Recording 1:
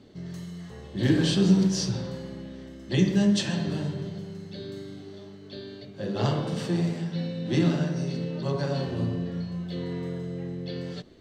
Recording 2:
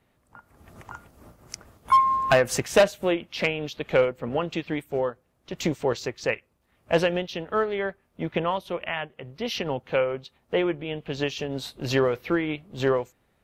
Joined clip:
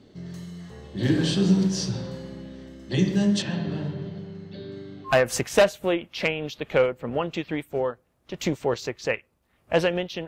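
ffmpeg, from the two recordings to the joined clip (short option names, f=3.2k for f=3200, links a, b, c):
-filter_complex "[0:a]asettb=1/sr,asplit=3[a][b][c];[a]atrim=end=3.424[d];[b]atrim=start=3.42:end=5.16,asetpts=PTS-STARTPTS,afade=t=in:d=0.004:c=qsin,afade=t=out:st=1.736:d=0.004:c=qsin,lowpass=3.5k[e];[c]atrim=start=5.156[f];[d][e]acrossfade=d=0.004:c1=hsin:c2=qsin[g];[g][f]acrossfade=d=0.004:c1=qsin:c2=hsin,apad=whole_dur=10.27,atrim=end=10.27,atrim=end=5.16,asetpts=PTS-STARTPTS[h];[1:a]atrim=start=2.23:end=7.46,asetpts=PTS-STARTPTS[i];[h][i]acrossfade=d=0.12:c1=tri:c2=tri"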